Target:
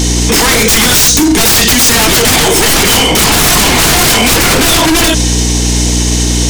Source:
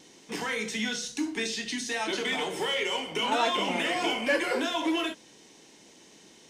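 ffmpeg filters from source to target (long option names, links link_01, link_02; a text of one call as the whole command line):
ffmpeg -i in.wav -af "aeval=exprs='val(0)+0.00891*(sin(2*PI*60*n/s)+sin(2*PI*2*60*n/s)/2+sin(2*PI*3*60*n/s)/3+sin(2*PI*4*60*n/s)/4+sin(2*PI*5*60*n/s)/5)':channel_layout=same,bass=frequency=250:gain=-15,treble=frequency=4000:gain=10,aeval=exprs='0.251*sin(PI/2*8.91*val(0)/0.251)':channel_layout=same,bandreject=frequency=560:width=12,asoftclip=type=tanh:threshold=-11dB,lowshelf=frequency=310:gain=12,alimiter=level_in=16dB:limit=-1dB:release=50:level=0:latency=1,volume=-1dB" out.wav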